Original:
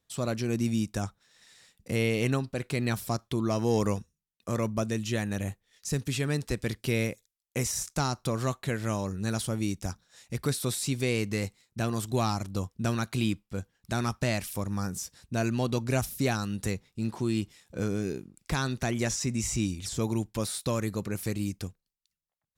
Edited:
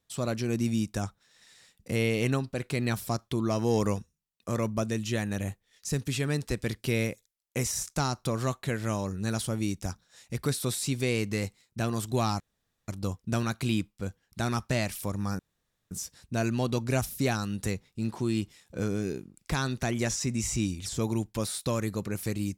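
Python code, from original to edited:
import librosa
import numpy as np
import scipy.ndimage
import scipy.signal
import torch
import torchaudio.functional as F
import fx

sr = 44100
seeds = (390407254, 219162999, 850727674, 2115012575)

y = fx.edit(x, sr, fx.insert_room_tone(at_s=12.4, length_s=0.48),
    fx.insert_room_tone(at_s=14.91, length_s=0.52), tone=tone)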